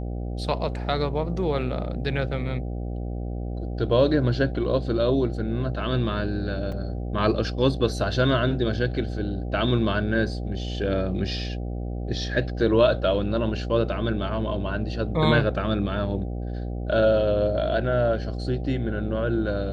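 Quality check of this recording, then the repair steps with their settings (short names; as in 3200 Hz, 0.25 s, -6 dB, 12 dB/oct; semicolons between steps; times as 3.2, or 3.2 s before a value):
buzz 60 Hz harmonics 13 -30 dBFS
6.72 gap 3.7 ms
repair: de-hum 60 Hz, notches 13; interpolate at 6.72, 3.7 ms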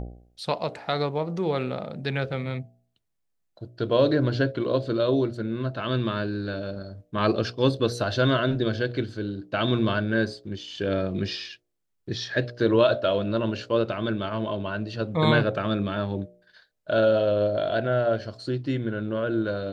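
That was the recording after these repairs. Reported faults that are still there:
none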